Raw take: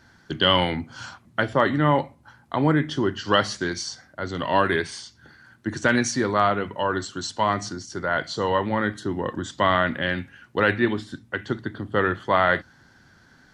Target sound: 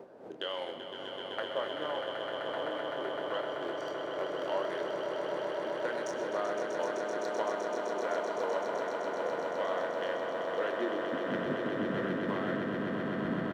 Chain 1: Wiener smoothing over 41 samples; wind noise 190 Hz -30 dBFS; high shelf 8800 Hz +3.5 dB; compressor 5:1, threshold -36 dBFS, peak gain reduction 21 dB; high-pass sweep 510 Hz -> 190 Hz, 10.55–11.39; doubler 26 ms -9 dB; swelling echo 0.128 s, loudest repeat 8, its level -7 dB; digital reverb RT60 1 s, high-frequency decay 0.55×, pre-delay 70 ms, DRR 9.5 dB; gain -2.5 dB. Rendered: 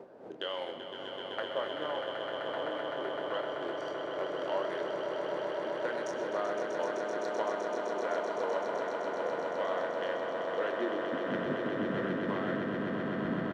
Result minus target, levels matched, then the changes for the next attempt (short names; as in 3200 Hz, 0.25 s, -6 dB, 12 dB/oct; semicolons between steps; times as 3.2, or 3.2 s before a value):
8000 Hz band -2.5 dB
change: high shelf 8800 Hz +12.5 dB